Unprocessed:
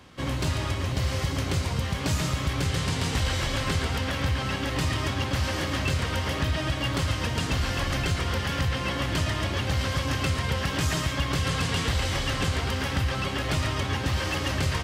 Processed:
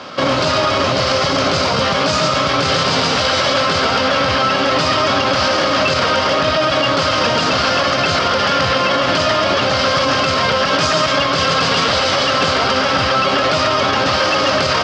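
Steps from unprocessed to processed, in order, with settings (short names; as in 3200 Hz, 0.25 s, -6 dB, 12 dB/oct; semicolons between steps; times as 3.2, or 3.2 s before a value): speaker cabinet 240–5800 Hz, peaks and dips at 340 Hz -4 dB, 600 Hz +9 dB, 1300 Hz +8 dB, 1900 Hz -4 dB, 4900 Hz +6 dB; maximiser +25 dB; gain -5.5 dB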